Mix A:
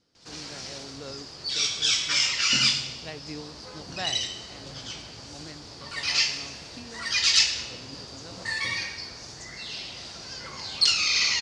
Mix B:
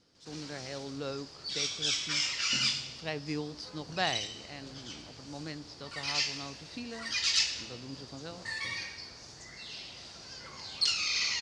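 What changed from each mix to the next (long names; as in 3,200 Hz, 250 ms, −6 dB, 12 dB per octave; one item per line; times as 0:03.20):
speech +3.5 dB
background −7.5 dB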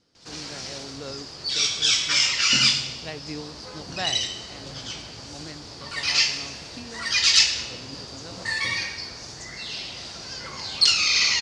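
background +10.5 dB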